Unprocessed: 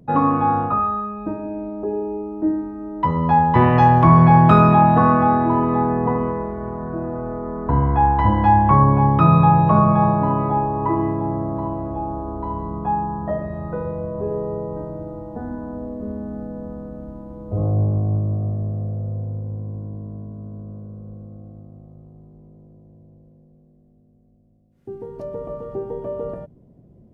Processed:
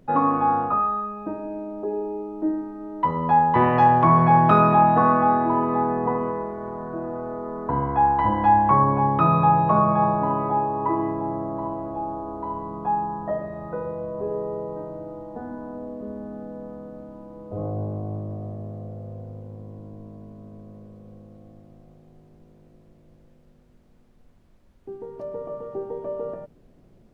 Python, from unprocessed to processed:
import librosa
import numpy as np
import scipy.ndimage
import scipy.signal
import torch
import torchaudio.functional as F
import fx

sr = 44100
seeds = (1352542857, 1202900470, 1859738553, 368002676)

y = fx.highpass(x, sr, hz=390.0, slope=6)
y = fx.high_shelf(y, sr, hz=2900.0, db=-9.5)
y = fx.dmg_noise_colour(y, sr, seeds[0], colour='brown', level_db=-56.0)